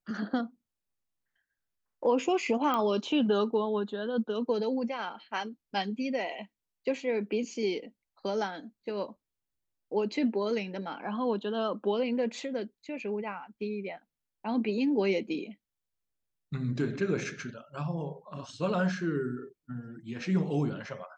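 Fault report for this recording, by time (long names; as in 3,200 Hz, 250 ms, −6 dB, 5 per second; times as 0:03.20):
0:02.74: click −17 dBFS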